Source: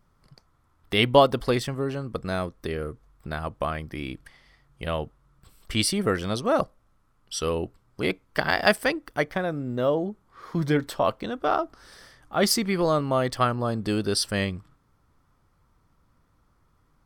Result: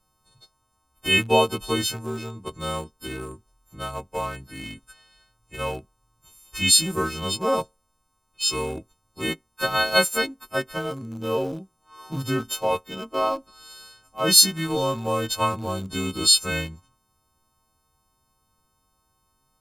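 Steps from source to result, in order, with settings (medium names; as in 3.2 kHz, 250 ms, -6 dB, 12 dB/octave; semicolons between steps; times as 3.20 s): partials quantised in pitch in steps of 3 st; treble shelf 2.8 kHz +2 dB; wide varispeed 0.87×; in parallel at -10 dB: small samples zeroed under -24.5 dBFS; on the sum: peaking EQ 1.9 kHz -13 dB 0.22 oct; trim -4.5 dB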